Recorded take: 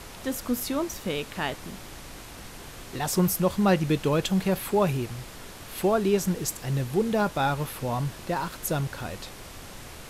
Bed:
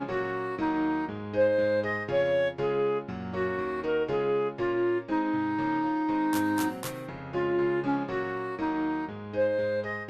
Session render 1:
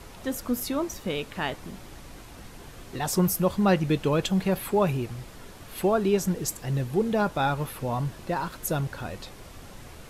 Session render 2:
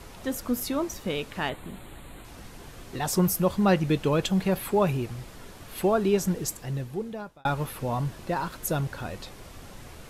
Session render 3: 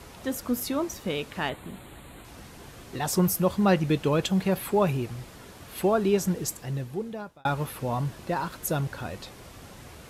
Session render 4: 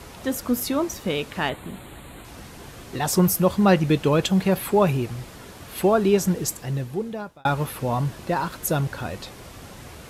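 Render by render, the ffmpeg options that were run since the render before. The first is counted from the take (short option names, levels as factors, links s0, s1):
-af "afftdn=nr=6:nf=-43"
-filter_complex "[0:a]asettb=1/sr,asplit=3[s0][s1][s2];[s0]atrim=end=1.494[s3];[s1]atrim=start=1.49:end=2.25,asetpts=PTS-STARTPTS,afade=t=in:d=0.004:c=qsin,afade=t=out:st=0.756:d=0.004:c=qsin,asuperstop=centerf=5500:order=8:qfactor=1.9[s4];[s2]atrim=start=2.246[s5];[s3][s4]acrossfade=d=0.004:c1=hsin:c2=qsin[s6];[s6][s5]acrossfade=d=0.004:c1=qsin:c2=hsin,asplit=2[s7][s8];[s7]atrim=end=7.45,asetpts=PTS-STARTPTS,afade=t=out:st=6.35:d=1.1[s9];[s8]atrim=start=7.45,asetpts=PTS-STARTPTS,afade=t=in:d=0.004:c=hsin[s10];[s9][s10]concat=n=2:v=0:a=1"
-af "highpass=49"
-af "volume=1.68"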